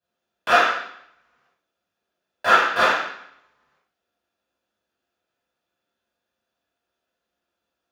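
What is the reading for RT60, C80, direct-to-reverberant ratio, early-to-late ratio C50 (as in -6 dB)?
0.70 s, 6.0 dB, -12.5 dB, 2.0 dB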